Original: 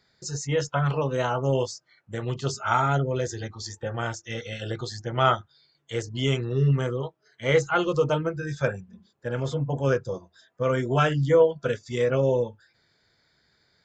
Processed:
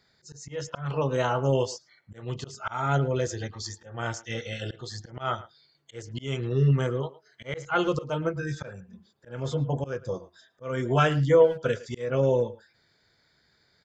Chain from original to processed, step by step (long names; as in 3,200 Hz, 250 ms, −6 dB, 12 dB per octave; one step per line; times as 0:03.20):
volume swells 267 ms
far-end echo of a speakerphone 110 ms, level −17 dB